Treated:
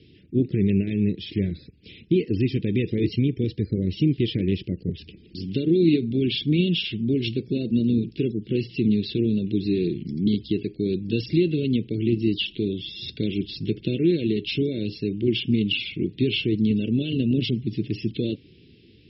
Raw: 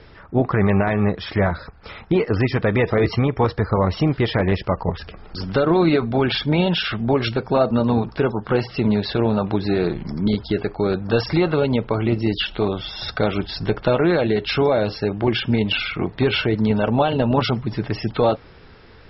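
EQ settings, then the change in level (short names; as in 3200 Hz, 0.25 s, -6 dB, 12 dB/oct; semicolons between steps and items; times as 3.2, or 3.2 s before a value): BPF 120–3600 Hz; elliptic band-stop 350–2800 Hz, stop band 80 dB; 0.0 dB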